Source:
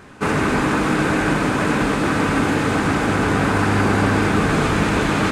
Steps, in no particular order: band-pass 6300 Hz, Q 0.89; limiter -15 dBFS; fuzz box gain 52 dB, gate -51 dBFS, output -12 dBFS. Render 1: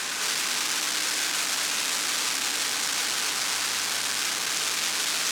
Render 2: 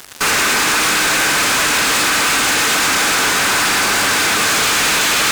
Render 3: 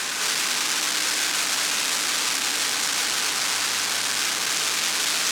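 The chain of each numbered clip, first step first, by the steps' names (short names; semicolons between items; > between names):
fuzz box > limiter > band-pass; limiter > band-pass > fuzz box; limiter > fuzz box > band-pass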